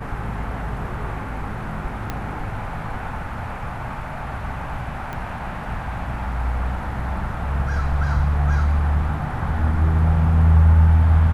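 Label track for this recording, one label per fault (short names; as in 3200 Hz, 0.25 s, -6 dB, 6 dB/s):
2.100000	2.100000	pop -12 dBFS
5.130000	5.130000	pop -18 dBFS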